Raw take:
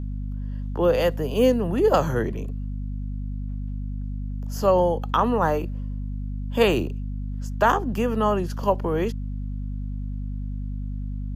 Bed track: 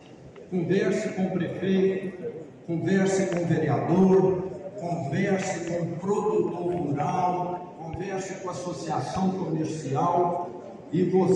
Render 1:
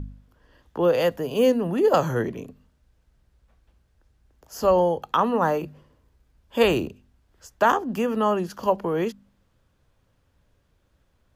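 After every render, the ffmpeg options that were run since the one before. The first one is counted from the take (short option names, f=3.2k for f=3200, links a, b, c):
-af "bandreject=f=50:t=h:w=4,bandreject=f=100:t=h:w=4,bandreject=f=150:t=h:w=4,bandreject=f=200:t=h:w=4,bandreject=f=250:t=h:w=4"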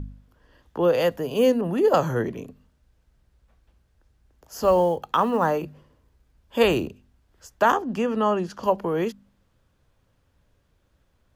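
-filter_complex "[0:a]asettb=1/sr,asplit=3[a][b][c];[a]atrim=end=1.614[d];[b]atrim=start=1.61:end=2.26,asetpts=PTS-STARTPTS,afade=t=in:d=0.004:c=qsin,afade=t=out:st=0.646:d=0.004:c=qsin,adynamicequalizer=threshold=0.02:dfrequency=1900:dqfactor=0.7:tfrequency=1900:tqfactor=0.7:attack=5:release=100:ratio=0.375:range=2:mode=cutabove:tftype=highshelf[e];[c]atrim=start=2.256[f];[d][e]acrossfade=d=0.004:c1=hsin:c2=qsin[g];[g][f]acrossfade=d=0.004:c1=qsin:c2=hsin,asettb=1/sr,asplit=3[h][i][j];[h]atrim=end=4.634[k];[i]atrim=start=4.63:end=5.46,asetpts=PTS-STARTPTS,afade=t=in:d=0.004:c=qsin,afade=t=out:st=0.826:d=0.004:c=qsin,acrusher=bits=9:mode=log:mix=0:aa=0.000001[l];[j]atrim=start=5.456[m];[k][l]acrossfade=d=0.004:c1=hsin:c2=qsin[n];[n][m]acrossfade=d=0.004:c1=qsin:c2=hsin,asettb=1/sr,asplit=3[o][p][q];[o]atrim=end=7.824[r];[p]atrim=start=7.82:end=8.64,asetpts=PTS-STARTPTS,afade=t=in:d=0.004:c=qsin,afade=t=out:st=0.816:d=0.004:c=qsin,lowpass=7.7k[s];[q]atrim=start=8.636[t];[r][s]acrossfade=d=0.004:c1=hsin:c2=qsin[u];[u][t]acrossfade=d=0.004:c1=qsin:c2=hsin"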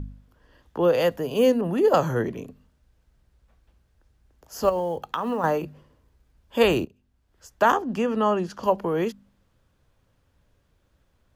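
-filter_complex "[0:a]asettb=1/sr,asplit=3[a][b][c];[a]atrim=end=4.694[d];[b]atrim=start=4.69:end=5.44,asetpts=PTS-STARTPTS,afade=t=in:d=0.004:c=qsin,afade=t=out:st=0.746:d=0.004:c=qsin,acompressor=threshold=-22dB:ratio=10:attack=3.2:release=140:knee=1:detection=peak[e];[c]atrim=start=5.436[f];[d][e]acrossfade=d=0.004:c1=hsin:c2=qsin[g];[g][f]acrossfade=d=0.004:c1=qsin:c2=hsin,asplit=2[h][i];[h]atrim=end=6.85,asetpts=PTS-STARTPTS,afade=t=out:st=6.846:d=0.004:c=hsin:silence=0.133352[j];[i]atrim=start=6.85,asetpts=PTS-STARTPTS,afade=t=in:d=0.77:silence=0.133352[k];[j][k]concat=n=2:v=0:a=1"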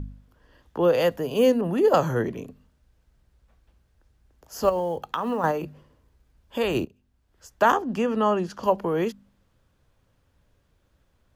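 -filter_complex "[0:a]asettb=1/sr,asplit=3[a][b][c];[a]atrim=end=5.514[d];[b]atrim=start=5.51:end=6.75,asetpts=PTS-STARTPTS,afade=t=in:d=0.004:c=qsin,afade=t=out:st=1.236:d=0.004:c=qsin,acompressor=threshold=-25dB:ratio=2:attack=3.2:release=140:knee=1:detection=peak[e];[c]atrim=start=6.746[f];[d][e]acrossfade=d=0.004:c1=hsin:c2=qsin[g];[g][f]acrossfade=d=0.004:c1=qsin:c2=hsin"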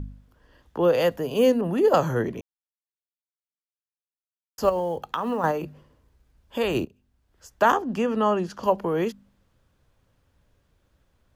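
-filter_complex "[0:a]asplit=3[a][b][c];[a]atrim=end=2.41,asetpts=PTS-STARTPTS,afade=t=out:st=2.406:d=0.004:c=hsin[d];[b]atrim=start=2.41:end=4.58,asetpts=PTS-STARTPTS,volume=0[e];[c]atrim=start=4.58,asetpts=PTS-STARTPTS,afade=t=in:d=0.004:c=hsin[f];[d][e][f]concat=n=3:v=0:a=1"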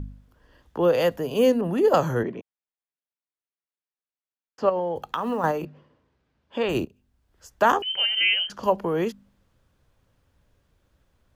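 -filter_complex "[0:a]asettb=1/sr,asplit=3[a][b][c];[a]atrim=end=2.234[d];[b]atrim=start=2.23:end=4.96,asetpts=PTS-STARTPTS,afade=t=in:d=0.004:c=qsin,afade=t=out:st=2.726:d=0.004:c=qsin,highpass=160,lowpass=2.9k[e];[c]atrim=start=4.956[f];[d][e]acrossfade=d=0.004:c1=hsin:c2=qsin[g];[g][f]acrossfade=d=0.004:c1=qsin:c2=hsin,asettb=1/sr,asplit=3[h][i][j];[h]atrim=end=5.654[k];[i]atrim=start=5.65:end=6.69,asetpts=PTS-STARTPTS,afade=t=in:d=0.004:c=qsin,afade=t=out:st=1.036:d=0.004:c=qsin,highpass=130,lowpass=4k[l];[j]atrim=start=6.686[m];[k][l]acrossfade=d=0.004:c1=hsin:c2=qsin[n];[n][m]acrossfade=d=0.004:c1=qsin:c2=hsin,asettb=1/sr,asplit=3[o][p][q];[o]atrim=end=7.824[r];[p]atrim=start=7.82:end=8.5,asetpts=PTS-STARTPTS,afade=t=in:d=0.004:c=qsin,afade=t=out:st=0.676:d=0.004:c=qsin,lowpass=f=2.8k:t=q:w=0.5098,lowpass=f=2.8k:t=q:w=0.6013,lowpass=f=2.8k:t=q:w=0.9,lowpass=f=2.8k:t=q:w=2.563,afreqshift=-3300[s];[q]atrim=start=8.496[t];[r][s]acrossfade=d=0.004:c1=hsin:c2=qsin[u];[u][t]acrossfade=d=0.004:c1=qsin:c2=hsin"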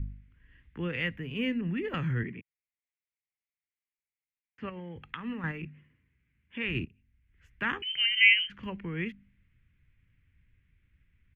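-af "firequalizer=gain_entry='entry(120,0);entry(630,-28);entry(2100,7);entry(4800,-29)':delay=0.05:min_phase=1"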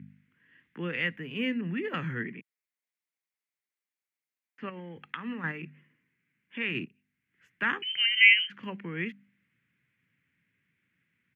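-af "highpass=f=160:w=0.5412,highpass=f=160:w=1.3066,equalizer=f=1.7k:w=1.5:g=3.5"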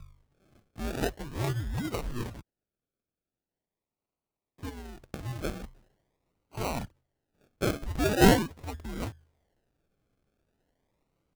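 -af "afreqshift=-120,acrusher=samples=36:mix=1:aa=0.000001:lfo=1:lforange=21.6:lforate=0.42"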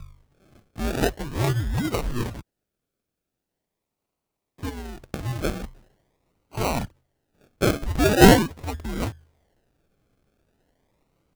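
-af "volume=7.5dB,alimiter=limit=-2dB:level=0:latency=1"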